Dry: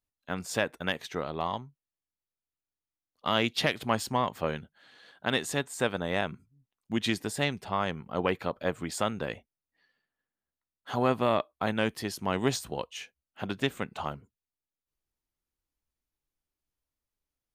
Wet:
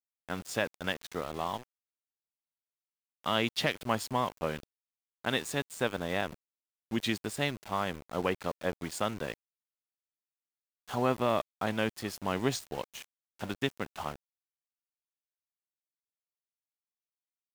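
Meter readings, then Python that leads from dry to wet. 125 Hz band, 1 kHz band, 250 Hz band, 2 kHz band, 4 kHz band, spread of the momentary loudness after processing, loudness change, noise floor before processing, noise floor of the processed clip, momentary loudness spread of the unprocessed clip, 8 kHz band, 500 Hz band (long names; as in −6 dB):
−3.0 dB, −2.5 dB, −2.5 dB, −2.5 dB, −2.5 dB, 10 LU, −2.5 dB, below −85 dBFS, below −85 dBFS, 10 LU, −3.0 dB, −2.5 dB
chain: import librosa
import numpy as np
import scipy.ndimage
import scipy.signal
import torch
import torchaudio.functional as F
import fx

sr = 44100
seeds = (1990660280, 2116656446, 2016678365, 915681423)

y = np.where(np.abs(x) >= 10.0 ** (-38.0 / 20.0), x, 0.0)
y = F.gain(torch.from_numpy(y), -2.5).numpy()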